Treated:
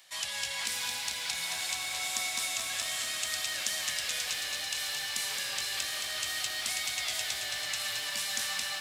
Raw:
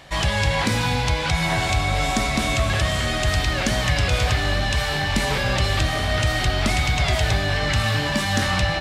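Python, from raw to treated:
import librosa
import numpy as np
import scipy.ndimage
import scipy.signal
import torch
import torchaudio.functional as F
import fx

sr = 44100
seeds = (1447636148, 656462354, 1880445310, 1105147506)

y = np.diff(x, prepend=0.0)
y = fx.echo_crushed(y, sr, ms=220, feedback_pct=80, bits=9, wet_db=-6)
y = y * librosa.db_to_amplitude(-2.5)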